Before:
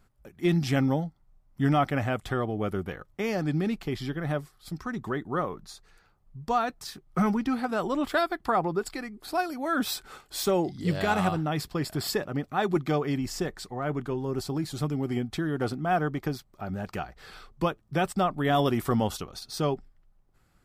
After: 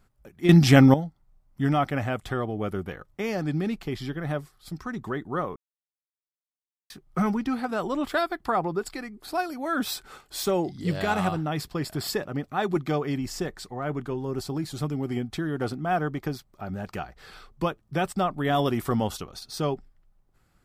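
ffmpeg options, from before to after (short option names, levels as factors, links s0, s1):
-filter_complex "[0:a]asplit=5[s0][s1][s2][s3][s4];[s0]atrim=end=0.492[s5];[s1]atrim=start=0.488:end=0.942,asetpts=PTS-STARTPTS,volume=3.16[s6];[s2]atrim=start=0.938:end=5.56,asetpts=PTS-STARTPTS,afade=t=out:st=4.618:d=0.004:c=hsin[s7];[s3]atrim=start=5.56:end=6.9,asetpts=PTS-STARTPTS,volume=0[s8];[s4]atrim=start=6.9,asetpts=PTS-STARTPTS,afade=t=in:d=0.004:c=hsin[s9];[s5][s6]acrossfade=d=0.004:c1=hsin:c2=hsin[s10];[s7][s8][s9]concat=n=3:v=0:a=1[s11];[s10][s11]acrossfade=d=0.004:c1=hsin:c2=hsin"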